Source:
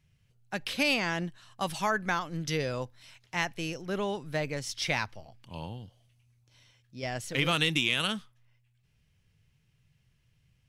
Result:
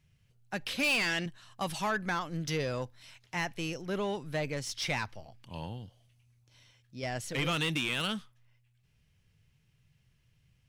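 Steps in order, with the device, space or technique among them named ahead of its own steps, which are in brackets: 0.83–1.26 weighting filter D; saturation between pre-emphasis and de-emphasis (high shelf 6300 Hz +9.5 dB; soft clip -24 dBFS, distortion -5 dB; high shelf 6300 Hz -9.5 dB)

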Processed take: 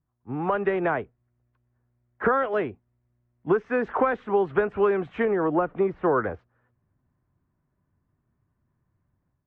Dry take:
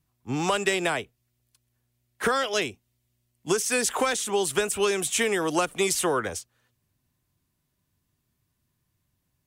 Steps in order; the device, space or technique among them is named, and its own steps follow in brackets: 5.25–6.39 de-esser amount 100%; action camera in a waterproof case (LPF 1600 Hz 24 dB/oct; AGC gain up to 8 dB; gain -4.5 dB; AAC 48 kbps 44100 Hz)

